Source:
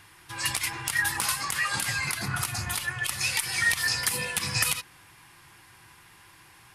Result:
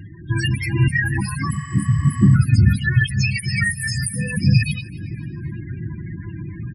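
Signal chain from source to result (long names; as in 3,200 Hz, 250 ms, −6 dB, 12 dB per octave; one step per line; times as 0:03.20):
automatic gain control gain up to 8 dB
0:03.62–0:04.31: high shelf with overshoot 5,900 Hz +8.5 dB, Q 1.5
downward compressor 8 to 1, threshold −29 dBFS, peak gain reduction 22.5 dB
drawn EQ curve 210 Hz 0 dB, 770 Hz −24 dB, 1,900 Hz −17 dB
spectral peaks only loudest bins 16
on a send: repeating echo 260 ms, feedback 41%, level −21.5 dB
0:01.56–0:02.33: on the sum: healed spectral selection 1,100–8,700 Hz before
high-pass filter 130 Hz 6 dB per octave
boost into a limiter +32 dB
level −3.5 dB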